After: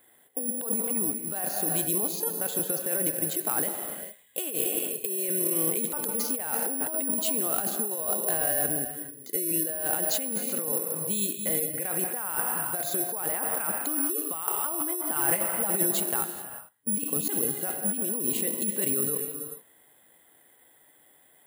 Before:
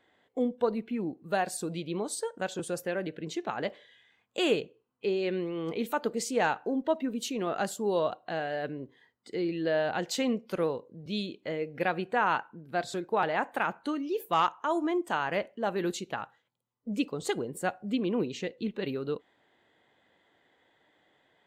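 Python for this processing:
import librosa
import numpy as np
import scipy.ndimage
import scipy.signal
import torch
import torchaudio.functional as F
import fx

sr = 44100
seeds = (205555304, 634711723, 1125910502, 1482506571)

y = fx.rev_gated(x, sr, seeds[0], gate_ms=460, shape='flat', drr_db=8.5)
y = (np.kron(scipy.signal.resample_poly(y, 1, 4), np.eye(4)[0]) * 4)[:len(y)]
y = fx.over_compress(y, sr, threshold_db=-27.0, ratio=-1.0)
y = fx.comb(y, sr, ms=5.9, depth=0.84, at=(15.15, 16.01))
y = y * librosa.db_to_amplitude(-1.0)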